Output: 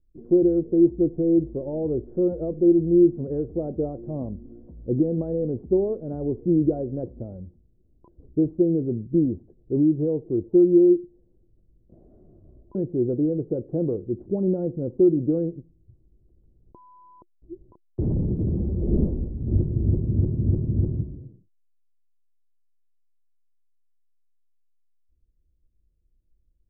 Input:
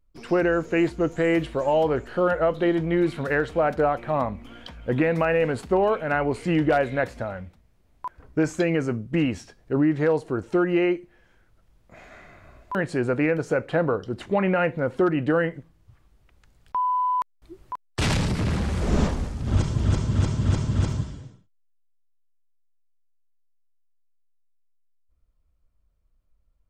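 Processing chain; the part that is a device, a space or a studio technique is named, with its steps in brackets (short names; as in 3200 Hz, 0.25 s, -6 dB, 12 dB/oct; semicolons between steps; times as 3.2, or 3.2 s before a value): under water (LPF 440 Hz 24 dB/oct; bell 350 Hz +7.5 dB 0.2 oct)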